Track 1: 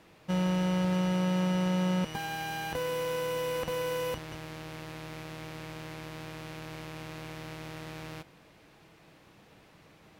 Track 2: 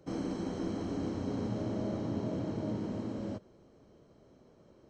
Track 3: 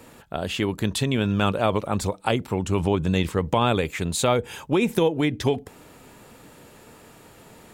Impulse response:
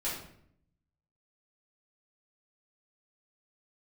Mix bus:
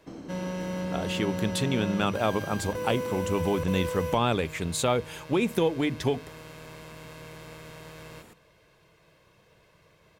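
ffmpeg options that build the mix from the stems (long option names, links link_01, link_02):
-filter_complex "[0:a]aecho=1:1:1.9:0.61,volume=-4dB[link_01];[1:a]alimiter=level_in=7dB:limit=-24dB:level=0:latency=1:release=500,volume=-7dB,volume=-1.5dB[link_02];[2:a]bandreject=frequency=50:width_type=h:width=6,bandreject=frequency=100:width_type=h:width=6,bandreject=frequency=150:width_type=h:width=6,adelay=600,volume=-4dB[link_03];[link_01][link_02][link_03]amix=inputs=3:normalize=0"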